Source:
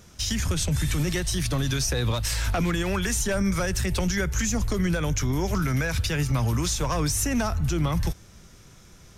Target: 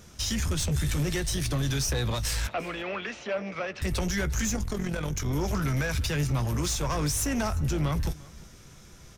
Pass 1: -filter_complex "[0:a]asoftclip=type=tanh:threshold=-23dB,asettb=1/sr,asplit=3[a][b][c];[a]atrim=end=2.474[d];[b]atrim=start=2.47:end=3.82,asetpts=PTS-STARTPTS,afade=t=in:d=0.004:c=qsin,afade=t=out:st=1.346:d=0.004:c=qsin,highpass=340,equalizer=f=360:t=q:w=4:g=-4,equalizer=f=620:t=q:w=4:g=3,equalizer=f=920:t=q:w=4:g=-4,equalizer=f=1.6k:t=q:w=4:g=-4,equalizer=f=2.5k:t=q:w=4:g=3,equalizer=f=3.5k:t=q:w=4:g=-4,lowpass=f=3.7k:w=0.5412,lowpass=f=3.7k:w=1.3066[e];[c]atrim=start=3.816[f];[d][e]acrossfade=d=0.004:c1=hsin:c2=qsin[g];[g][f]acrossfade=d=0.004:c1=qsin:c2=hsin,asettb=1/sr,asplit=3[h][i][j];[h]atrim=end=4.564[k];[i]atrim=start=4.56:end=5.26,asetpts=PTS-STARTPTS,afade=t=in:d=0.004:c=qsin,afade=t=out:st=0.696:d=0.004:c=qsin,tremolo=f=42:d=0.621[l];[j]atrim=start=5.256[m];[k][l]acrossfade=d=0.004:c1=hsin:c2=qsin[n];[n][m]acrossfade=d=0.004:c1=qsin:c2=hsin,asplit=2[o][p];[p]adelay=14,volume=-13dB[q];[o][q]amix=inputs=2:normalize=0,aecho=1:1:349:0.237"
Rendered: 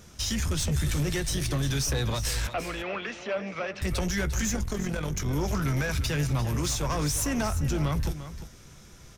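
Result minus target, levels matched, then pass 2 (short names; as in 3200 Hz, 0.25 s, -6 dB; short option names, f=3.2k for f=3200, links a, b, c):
echo-to-direct +10 dB
-filter_complex "[0:a]asoftclip=type=tanh:threshold=-23dB,asettb=1/sr,asplit=3[a][b][c];[a]atrim=end=2.474[d];[b]atrim=start=2.47:end=3.82,asetpts=PTS-STARTPTS,afade=t=in:d=0.004:c=qsin,afade=t=out:st=1.346:d=0.004:c=qsin,highpass=340,equalizer=f=360:t=q:w=4:g=-4,equalizer=f=620:t=q:w=4:g=3,equalizer=f=920:t=q:w=4:g=-4,equalizer=f=1.6k:t=q:w=4:g=-4,equalizer=f=2.5k:t=q:w=4:g=3,equalizer=f=3.5k:t=q:w=4:g=-4,lowpass=f=3.7k:w=0.5412,lowpass=f=3.7k:w=1.3066[e];[c]atrim=start=3.816[f];[d][e]acrossfade=d=0.004:c1=hsin:c2=qsin[g];[g][f]acrossfade=d=0.004:c1=qsin:c2=hsin,asettb=1/sr,asplit=3[h][i][j];[h]atrim=end=4.564[k];[i]atrim=start=4.56:end=5.26,asetpts=PTS-STARTPTS,afade=t=in:d=0.004:c=qsin,afade=t=out:st=0.696:d=0.004:c=qsin,tremolo=f=42:d=0.621[l];[j]atrim=start=5.256[m];[k][l]acrossfade=d=0.004:c1=hsin:c2=qsin[n];[n][m]acrossfade=d=0.004:c1=qsin:c2=hsin,asplit=2[o][p];[p]adelay=14,volume=-13dB[q];[o][q]amix=inputs=2:normalize=0,aecho=1:1:349:0.075"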